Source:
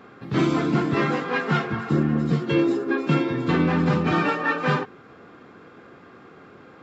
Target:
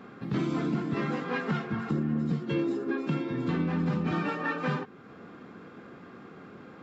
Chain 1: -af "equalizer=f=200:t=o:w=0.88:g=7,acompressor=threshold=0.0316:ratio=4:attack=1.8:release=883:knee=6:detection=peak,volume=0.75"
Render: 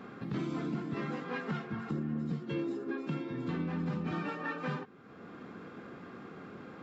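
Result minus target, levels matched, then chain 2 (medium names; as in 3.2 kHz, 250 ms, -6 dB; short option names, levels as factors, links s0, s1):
compression: peak gain reduction +6.5 dB
-af "equalizer=f=200:t=o:w=0.88:g=7,acompressor=threshold=0.0841:ratio=4:attack=1.8:release=883:knee=6:detection=peak,volume=0.75"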